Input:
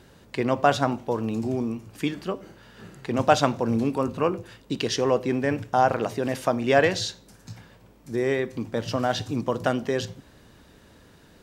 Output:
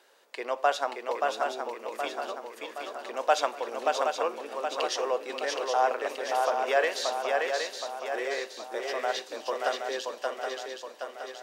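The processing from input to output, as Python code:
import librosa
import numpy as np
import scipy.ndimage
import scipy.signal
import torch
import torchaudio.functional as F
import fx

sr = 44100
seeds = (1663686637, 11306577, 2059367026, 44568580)

y = scipy.signal.sosfilt(scipy.signal.butter(4, 470.0, 'highpass', fs=sr, output='sos'), x)
y = fx.echo_swing(y, sr, ms=771, ratio=3, feedback_pct=51, wet_db=-3.5)
y = F.gain(torch.from_numpy(y), -4.5).numpy()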